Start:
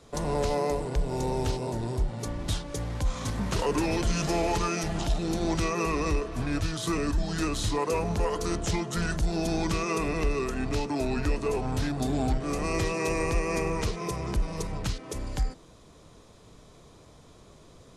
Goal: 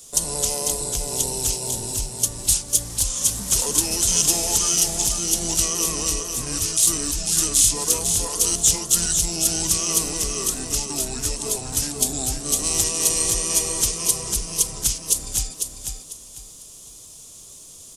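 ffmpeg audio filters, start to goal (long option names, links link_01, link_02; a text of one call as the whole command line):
ffmpeg -i in.wav -filter_complex "[0:a]aexciter=amount=15.5:drive=8.6:freq=5400,asplit=2[link_01][link_02];[link_02]asetrate=22050,aresample=44100,atempo=2,volume=-13dB[link_03];[link_01][link_03]amix=inputs=2:normalize=0,asplit=2[link_04][link_05];[link_05]aecho=0:1:497|994|1491|1988:0.501|0.14|0.0393|0.011[link_06];[link_04][link_06]amix=inputs=2:normalize=0,volume=-4.5dB" out.wav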